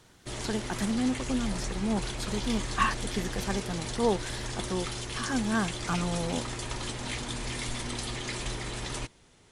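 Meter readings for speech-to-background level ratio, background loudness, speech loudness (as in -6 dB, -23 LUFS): 3.0 dB, -35.5 LUFS, -32.5 LUFS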